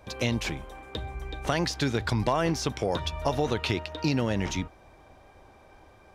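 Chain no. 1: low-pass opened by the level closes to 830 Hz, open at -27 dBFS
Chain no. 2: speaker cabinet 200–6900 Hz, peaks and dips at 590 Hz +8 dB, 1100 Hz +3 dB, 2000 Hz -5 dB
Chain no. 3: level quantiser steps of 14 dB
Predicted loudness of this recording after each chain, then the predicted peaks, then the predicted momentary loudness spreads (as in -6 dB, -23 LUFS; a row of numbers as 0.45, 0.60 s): -29.0, -28.5, -32.0 LUFS; -10.5, -9.0, -14.0 dBFS; 12, 14, 15 LU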